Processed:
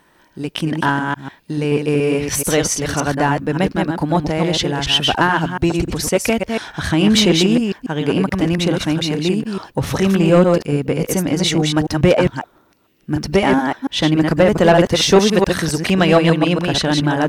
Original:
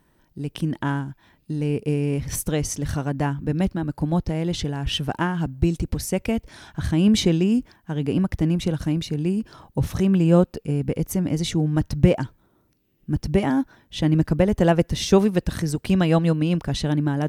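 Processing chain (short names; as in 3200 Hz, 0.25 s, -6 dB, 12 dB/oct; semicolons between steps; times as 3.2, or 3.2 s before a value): reverse delay 0.143 s, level -4 dB; overdrive pedal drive 18 dB, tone 4900 Hz, clips at -1 dBFS; gain +1 dB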